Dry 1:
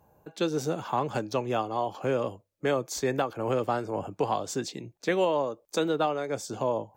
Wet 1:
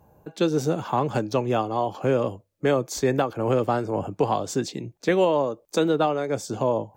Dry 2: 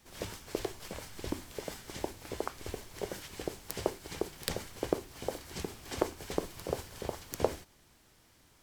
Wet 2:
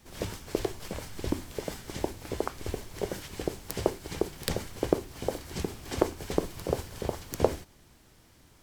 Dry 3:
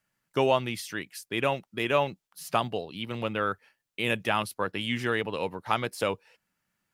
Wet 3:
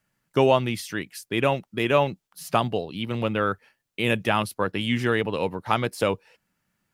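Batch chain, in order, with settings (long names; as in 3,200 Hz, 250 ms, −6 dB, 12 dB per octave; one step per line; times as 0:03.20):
low-shelf EQ 460 Hz +5.5 dB
level +2.5 dB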